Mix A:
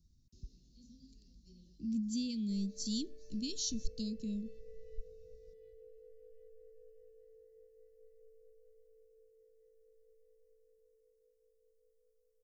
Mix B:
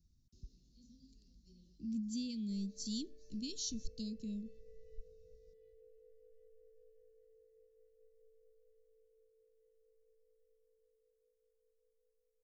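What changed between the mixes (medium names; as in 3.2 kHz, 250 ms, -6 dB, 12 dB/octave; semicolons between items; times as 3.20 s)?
speech -3.5 dB; background -6.0 dB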